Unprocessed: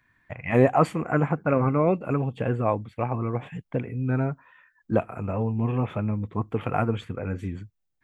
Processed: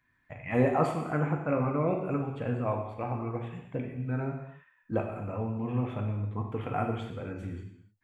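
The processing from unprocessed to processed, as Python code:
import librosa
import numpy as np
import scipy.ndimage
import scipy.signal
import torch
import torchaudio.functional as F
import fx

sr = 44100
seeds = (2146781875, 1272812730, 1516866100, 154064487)

y = fx.rev_gated(x, sr, seeds[0], gate_ms=320, shape='falling', drr_db=1.5)
y = y * librosa.db_to_amplitude(-8.0)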